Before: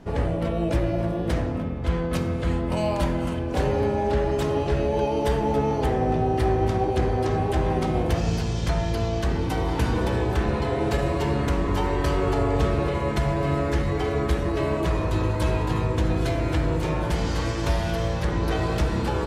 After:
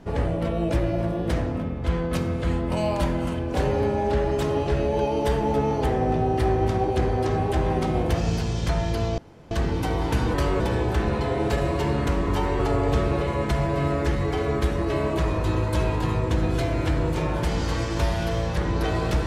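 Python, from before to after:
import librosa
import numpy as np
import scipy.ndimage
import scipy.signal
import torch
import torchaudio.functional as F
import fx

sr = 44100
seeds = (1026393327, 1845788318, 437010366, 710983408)

y = fx.edit(x, sr, fx.insert_room_tone(at_s=9.18, length_s=0.33),
    fx.move(start_s=12.0, length_s=0.26, to_s=10.01), tone=tone)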